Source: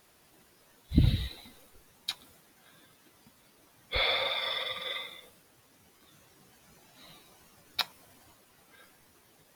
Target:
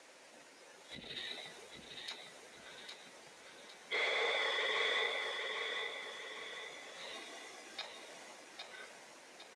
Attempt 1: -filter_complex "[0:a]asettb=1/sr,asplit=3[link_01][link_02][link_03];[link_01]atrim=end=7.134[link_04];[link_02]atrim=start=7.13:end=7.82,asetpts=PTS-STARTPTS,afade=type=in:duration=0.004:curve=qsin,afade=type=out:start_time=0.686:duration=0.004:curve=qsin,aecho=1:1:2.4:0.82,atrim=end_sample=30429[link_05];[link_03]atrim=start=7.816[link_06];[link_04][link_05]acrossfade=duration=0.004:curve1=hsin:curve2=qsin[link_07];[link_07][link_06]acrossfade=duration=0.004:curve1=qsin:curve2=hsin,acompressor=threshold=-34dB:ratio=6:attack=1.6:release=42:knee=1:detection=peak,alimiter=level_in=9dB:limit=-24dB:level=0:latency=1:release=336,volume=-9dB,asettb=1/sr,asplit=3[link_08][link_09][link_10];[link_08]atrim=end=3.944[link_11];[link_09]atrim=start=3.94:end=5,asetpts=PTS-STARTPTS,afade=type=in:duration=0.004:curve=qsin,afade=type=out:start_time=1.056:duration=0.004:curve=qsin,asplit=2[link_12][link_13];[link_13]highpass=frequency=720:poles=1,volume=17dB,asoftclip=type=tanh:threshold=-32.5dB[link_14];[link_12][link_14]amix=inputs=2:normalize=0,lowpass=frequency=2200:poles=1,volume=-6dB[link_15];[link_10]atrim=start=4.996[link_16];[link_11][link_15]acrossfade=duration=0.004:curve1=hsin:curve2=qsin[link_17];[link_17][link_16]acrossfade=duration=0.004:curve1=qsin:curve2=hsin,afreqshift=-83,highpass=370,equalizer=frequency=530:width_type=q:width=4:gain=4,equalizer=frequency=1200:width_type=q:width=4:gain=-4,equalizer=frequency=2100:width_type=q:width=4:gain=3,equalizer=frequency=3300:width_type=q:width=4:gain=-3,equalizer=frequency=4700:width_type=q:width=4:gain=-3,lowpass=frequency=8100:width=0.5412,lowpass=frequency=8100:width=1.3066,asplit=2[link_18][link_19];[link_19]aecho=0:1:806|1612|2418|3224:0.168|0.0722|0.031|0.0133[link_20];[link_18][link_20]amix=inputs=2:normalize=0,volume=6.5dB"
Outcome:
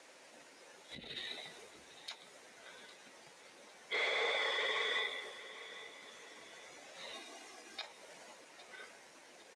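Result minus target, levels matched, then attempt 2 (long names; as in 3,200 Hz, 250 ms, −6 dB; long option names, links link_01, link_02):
echo-to-direct −10.5 dB
-filter_complex "[0:a]asettb=1/sr,asplit=3[link_01][link_02][link_03];[link_01]atrim=end=7.134[link_04];[link_02]atrim=start=7.13:end=7.82,asetpts=PTS-STARTPTS,afade=type=in:duration=0.004:curve=qsin,afade=type=out:start_time=0.686:duration=0.004:curve=qsin,aecho=1:1:2.4:0.82,atrim=end_sample=30429[link_05];[link_03]atrim=start=7.816[link_06];[link_04][link_05]acrossfade=duration=0.004:curve1=hsin:curve2=qsin[link_07];[link_07][link_06]acrossfade=duration=0.004:curve1=qsin:curve2=hsin,acompressor=threshold=-34dB:ratio=6:attack=1.6:release=42:knee=1:detection=peak,alimiter=level_in=9dB:limit=-24dB:level=0:latency=1:release=336,volume=-9dB,asettb=1/sr,asplit=3[link_08][link_09][link_10];[link_08]atrim=end=3.944[link_11];[link_09]atrim=start=3.94:end=5,asetpts=PTS-STARTPTS,afade=type=in:duration=0.004:curve=qsin,afade=type=out:start_time=1.056:duration=0.004:curve=qsin,asplit=2[link_12][link_13];[link_13]highpass=frequency=720:poles=1,volume=17dB,asoftclip=type=tanh:threshold=-32.5dB[link_14];[link_12][link_14]amix=inputs=2:normalize=0,lowpass=frequency=2200:poles=1,volume=-6dB[link_15];[link_10]atrim=start=4.996[link_16];[link_11][link_15]acrossfade=duration=0.004:curve1=hsin:curve2=qsin[link_17];[link_17][link_16]acrossfade=duration=0.004:curve1=qsin:curve2=hsin,afreqshift=-83,highpass=370,equalizer=frequency=530:width_type=q:width=4:gain=4,equalizer=frequency=1200:width_type=q:width=4:gain=-4,equalizer=frequency=2100:width_type=q:width=4:gain=3,equalizer=frequency=3300:width_type=q:width=4:gain=-3,equalizer=frequency=4700:width_type=q:width=4:gain=-3,lowpass=frequency=8100:width=0.5412,lowpass=frequency=8100:width=1.3066,asplit=2[link_18][link_19];[link_19]aecho=0:1:806|1612|2418|3224|4030:0.562|0.242|0.104|0.0447|0.0192[link_20];[link_18][link_20]amix=inputs=2:normalize=0,volume=6.5dB"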